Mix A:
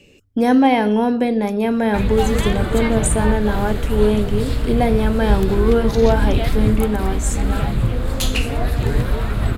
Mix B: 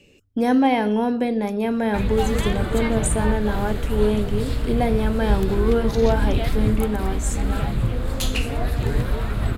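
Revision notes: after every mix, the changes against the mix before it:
speech -4.0 dB; background -3.5 dB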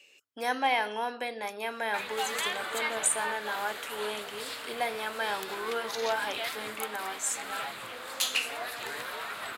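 master: add HPF 1000 Hz 12 dB/oct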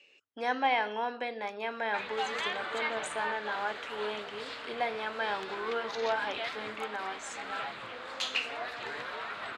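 master: add air absorption 150 m

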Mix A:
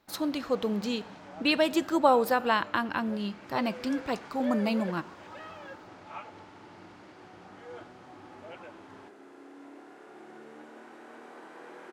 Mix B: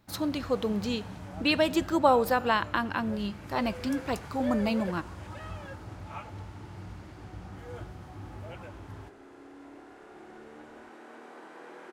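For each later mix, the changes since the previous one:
first sound: remove BPF 290–5700 Hz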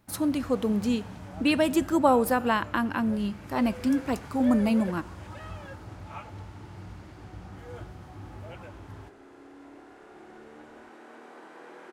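speech: add fifteen-band EQ 250 Hz +7 dB, 4000 Hz -6 dB, 10000 Hz +10 dB

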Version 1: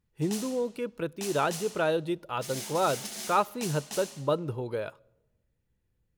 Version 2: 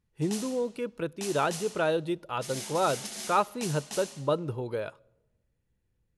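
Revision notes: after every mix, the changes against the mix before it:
master: add brick-wall FIR low-pass 12000 Hz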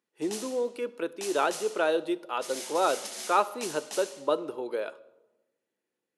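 speech: send +10.5 dB; master: add HPF 280 Hz 24 dB/oct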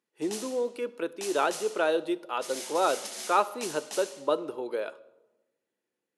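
none

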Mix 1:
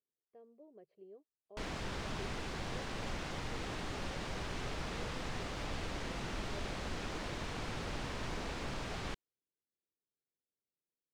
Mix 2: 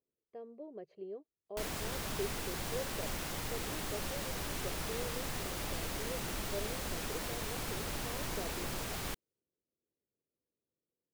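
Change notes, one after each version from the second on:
speech +10.5 dB; master: remove air absorption 110 m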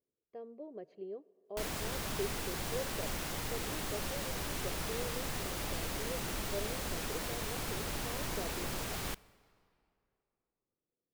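reverb: on, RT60 2.6 s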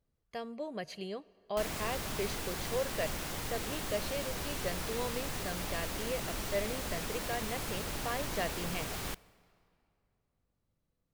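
speech: remove band-pass 390 Hz, Q 2.8

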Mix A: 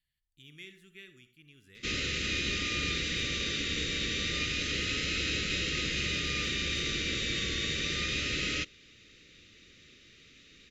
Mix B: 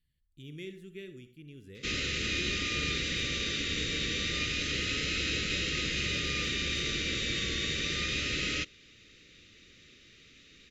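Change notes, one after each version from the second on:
speech: add resonant low shelf 770 Hz +10.5 dB, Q 1.5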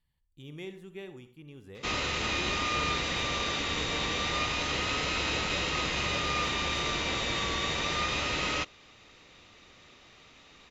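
master: remove Butterworth band-stop 860 Hz, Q 0.67

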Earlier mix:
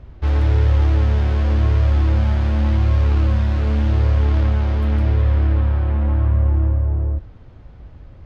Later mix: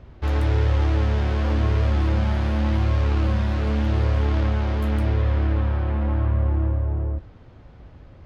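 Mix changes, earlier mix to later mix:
speech +10.0 dB; master: add low shelf 85 Hz -9 dB

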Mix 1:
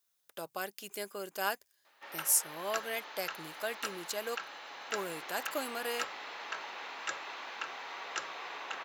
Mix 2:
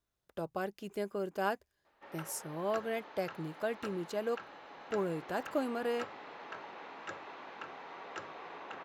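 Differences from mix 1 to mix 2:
background -3.5 dB; master: add tilt -4.5 dB/oct

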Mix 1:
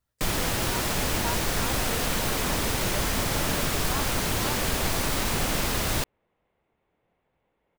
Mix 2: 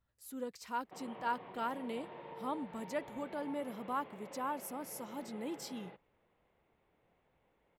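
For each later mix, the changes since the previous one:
first sound: muted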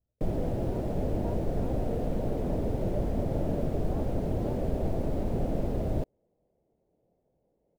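first sound: unmuted; second sound +3.0 dB; master: add EQ curve 640 Hz 0 dB, 1100 Hz -21 dB, 5900 Hz -30 dB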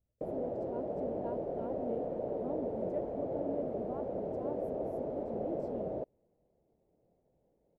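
first sound: add band-pass 550 Hz, Q 1.7

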